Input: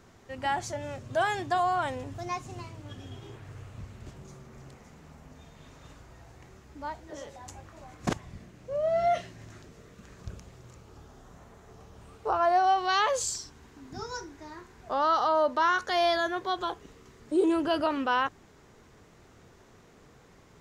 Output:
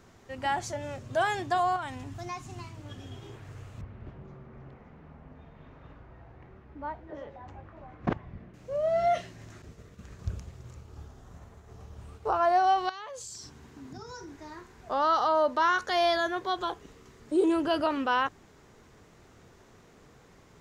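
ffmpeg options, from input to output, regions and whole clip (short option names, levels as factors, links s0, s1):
-filter_complex "[0:a]asettb=1/sr,asplit=3[s0][s1][s2];[s0]atrim=end=1.764[s3];[s1]atrim=start=1.76:end=2.77,asetpts=PTS-STARTPTS,afade=t=in:d=0.004:c=qsin,afade=t=out:st=1.006:d=0.004:c=qsin,equalizer=f=510:t=o:w=0.42:g=-13.5,acompressor=threshold=0.0224:ratio=2.5:attack=3.2:release=140:knee=1:detection=peak[s4];[s2]atrim=start=2.766[s5];[s3][s4]acrossfade=d=0.004:c1=hsin:c2=qsin[s6];[s6][s5]acrossfade=d=0.004:c1=qsin:c2=hsin,asettb=1/sr,asplit=3[s7][s8][s9];[s7]atrim=end=3.814[s10];[s8]atrim=start=3.81:end=8.54,asetpts=PTS-STARTPTS,afade=t=in:d=0.004:c=qsin,afade=t=out:st=4.726:d=0.004:c=qsin,lowpass=2700,aemphasis=mode=reproduction:type=75fm[s11];[s9]atrim=start=8.536[s12];[s10][s11]acrossfade=d=0.004:c1=hsin:c2=qsin[s13];[s13][s12]acrossfade=d=0.004:c1=qsin:c2=hsin,asettb=1/sr,asplit=3[s14][s15][s16];[s14]atrim=end=9.624[s17];[s15]atrim=start=9.62:end=12.31,asetpts=PTS-STARTPTS,afade=t=in:d=0.004:c=qsin,afade=t=out:st=2.686:d=0.004:c=qsin,agate=range=0.0224:threshold=0.00316:ratio=3:release=100:detection=peak,equalizer=f=76:w=0.93:g=9.5[s18];[s16]atrim=start=12.306[s19];[s17][s18]acrossfade=d=0.004:c1=hsin:c2=qsin[s20];[s20][s19]acrossfade=d=0.004:c1=qsin:c2=hsin,asettb=1/sr,asplit=3[s21][s22][s23];[s21]atrim=end=12.894[s24];[s22]atrim=start=12.89:end=14.36,asetpts=PTS-STARTPTS,afade=t=in:d=0.004:c=qsin,afade=t=out:st=1.466:d=0.004:c=qsin,highpass=94,lowshelf=f=200:g=8.5,acompressor=threshold=0.0112:ratio=8:attack=3.2:release=140:knee=1:detection=peak[s25];[s23]atrim=start=14.356[s26];[s24][s25]acrossfade=d=0.004:c1=hsin:c2=qsin[s27];[s27][s26]acrossfade=d=0.004:c1=qsin:c2=hsin"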